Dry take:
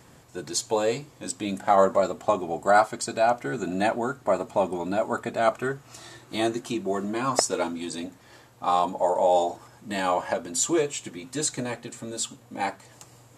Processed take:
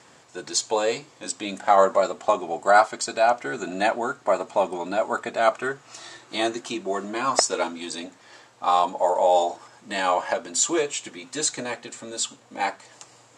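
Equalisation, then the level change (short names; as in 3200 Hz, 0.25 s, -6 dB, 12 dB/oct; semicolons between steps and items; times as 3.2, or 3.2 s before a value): HPF 580 Hz 6 dB/oct; LPF 8100 Hz 24 dB/oct; +4.5 dB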